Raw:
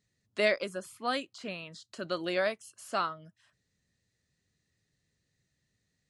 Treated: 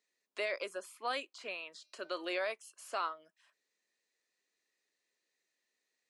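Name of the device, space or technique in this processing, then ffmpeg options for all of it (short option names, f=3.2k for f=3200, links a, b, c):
laptop speaker: -filter_complex "[0:a]highpass=f=350:w=0.5412,highpass=f=350:w=1.3066,equalizer=f=1k:t=o:w=0.35:g=4.5,equalizer=f=2.4k:t=o:w=0.32:g=5.5,alimiter=limit=-22.5dB:level=0:latency=1:release=24,asplit=3[a][b][c];[a]afade=t=out:st=1.8:d=0.02[d];[b]bandreject=f=303:t=h:w=4,bandreject=f=606:t=h:w=4,bandreject=f=909:t=h:w=4,bandreject=f=1.212k:t=h:w=4,bandreject=f=1.515k:t=h:w=4,bandreject=f=1.818k:t=h:w=4,bandreject=f=2.121k:t=h:w=4,bandreject=f=2.424k:t=h:w=4,bandreject=f=2.727k:t=h:w=4,bandreject=f=3.03k:t=h:w=4,bandreject=f=3.333k:t=h:w=4,bandreject=f=3.636k:t=h:w=4,bandreject=f=3.939k:t=h:w=4,bandreject=f=4.242k:t=h:w=4,bandreject=f=4.545k:t=h:w=4,bandreject=f=4.848k:t=h:w=4,bandreject=f=5.151k:t=h:w=4,bandreject=f=5.454k:t=h:w=4,bandreject=f=5.757k:t=h:w=4,bandreject=f=6.06k:t=h:w=4,afade=t=in:st=1.8:d=0.02,afade=t=out:st=2.38:d=0.02[e];[c]afade=t=in:st=2.38:d=0.02[f];[d][e][f]amix=inputs=3:normalize=0,volume=-3.5dB"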